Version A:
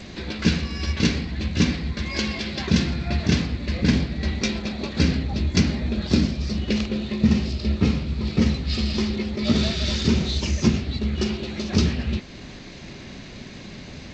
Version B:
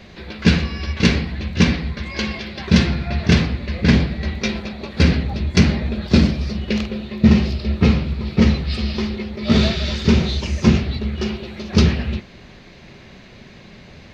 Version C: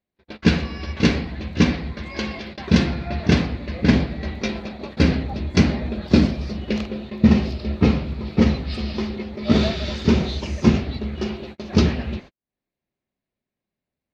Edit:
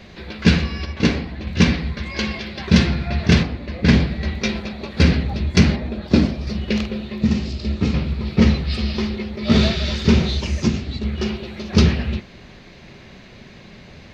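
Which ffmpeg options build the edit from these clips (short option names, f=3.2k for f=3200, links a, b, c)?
-filter_complex "[2:a]asplit=3[a][b][c];[0:a]asplit=2[d][e];[1:a]asplit=6[f][g][h][i][j][k];[f]atrim=end=0.852[l];[a]atrim=start=0.848:end=1.472[m];[g]atrim=start=1.468:end=3.432[n];[b]atrim=start=3.428:end=3.842[o];[h]atrim=start=3.838:end=5.762[p];[c]atrim=start=5.758:end=6.472[q];[i]atrim=start=6.468:end=7.222[r];[d]atrim=start=7.218:end=7.942[s];[j]atrim=start=7.938:end=10.632[t];[e]atrim=start=10.628:end=11.042[u];[k]atrim=start=11.038[v];[l][m]acrossfade=d=0.004:c1=hsin:c2=hsin[w];[w][n]acrossfade=d=0.004:c1=hsin:c2=hsin[x];[x][o]acrossfade=d=0.004:c1=hsin:c2=hsin[y];[y][p]acrossfade=d=0.004:c1=hsin:c2=hsin[z];[z][q]acrossfade=d=0.004:c1=hsin:c2=hsin[aa];[aa][r]acrossfade=d=0.004:c1=hsin:c2=hsin[ab];[ab][s]acrossfade=d=0.004:c1=hsin:c2=hsin[ac];[ac][t]acrossfade=d=0.004:c1=hsin:c2=hsin[ad];[ad][u]acrossfade=d=0.004:c1=hsin:c2=hsin[ae];[ae][v]acrossfade=d=0.004:c1=hsin:c2=hsin"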